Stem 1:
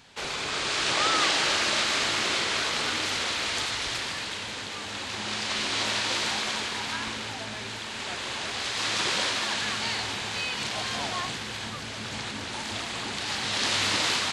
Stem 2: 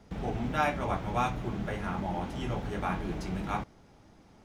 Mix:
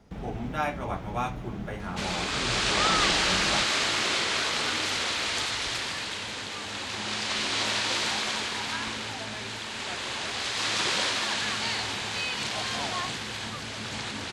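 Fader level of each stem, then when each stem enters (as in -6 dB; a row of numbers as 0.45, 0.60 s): 0.0, -1.0 dB; 1.80, 0.00 s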